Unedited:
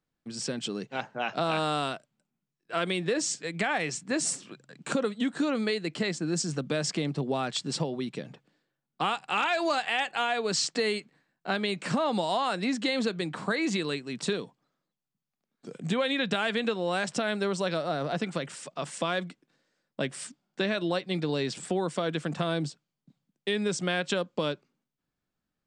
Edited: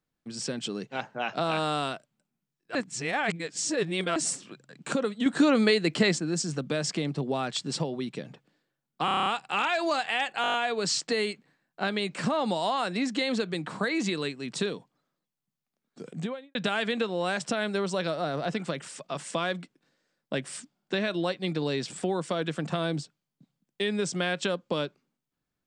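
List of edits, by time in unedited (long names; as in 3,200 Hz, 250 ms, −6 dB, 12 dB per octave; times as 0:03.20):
0:02.75–0:04.16: reverse
0:05.26–0:06.20: clip gain +6.5 dB
0:09.05: stutter 0.03 s, 8 plays
0:10.21: stutter 0.02 s, 7 plays
0:15.72–0:16.22: fade out and dull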